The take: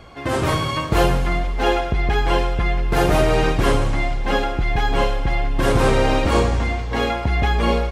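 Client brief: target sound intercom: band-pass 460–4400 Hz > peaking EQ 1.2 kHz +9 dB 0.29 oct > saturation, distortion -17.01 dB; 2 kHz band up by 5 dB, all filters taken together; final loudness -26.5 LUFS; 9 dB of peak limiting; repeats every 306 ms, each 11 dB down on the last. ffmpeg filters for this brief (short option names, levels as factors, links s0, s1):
-af "equalizer=f=2000:t=o:g=5.5,alimiter=limit=0.224:level=0:latency=1,highpass=460,lowpass=4400,equalizer=f=1200:t=o:w=0.29:g=9,aecho=1:1:306|612|918:0.282|0.0789|0.0221,asoftclip=threshold=0.126,volume=0.891"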